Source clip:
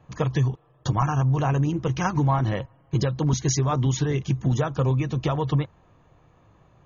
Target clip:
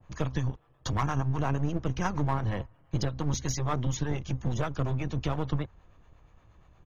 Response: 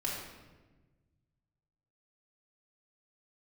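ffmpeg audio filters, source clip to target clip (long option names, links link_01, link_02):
-filter_complex "[0:a]lowshelf=frequency=83:gain=7.5,asplit=2[link_01][link_02];[link_02]asoftclip=type=hard:threshold=-21.5dB,volume=-5.5dB[link_03];[link_01][link_03]amix=inputs=2:normalize=0,acrossover=split=450[link_04][link_05];[link_04]aeval=exprs='val(0)*(1-0.5/2+0.5/2*cos(2*PI*8.5*n/s))':channel_layout=same[link_06];[link_05]aeval=exprs='val(0)*(1-0.5/2-0.5/2*cos(2*PI*8.5*n/s))':channel_layout=same[link_07];[link_06][link_07]amix=inputs=2:normalize=0,acrossover=split=140|1300[link_08][link_09][link_10];[link_08]aecho=1:1:3.7:0.6[link_11];[link_09]aeval=exprs='max(val(0),0)':channel_layout=same[link_12];[link_11][link_12][link_10]amix=inputs=3:normalize=0,adynamicequalizer=threshold=0.00708:dfrequency=1900:dqfactor=0.7:tfrequency=1900:tqfactor=0.7:attack=5:release=100:ratio=0.375:range=2.5:mode=cutabove:tftype=highshelf,volume=-3.5dB"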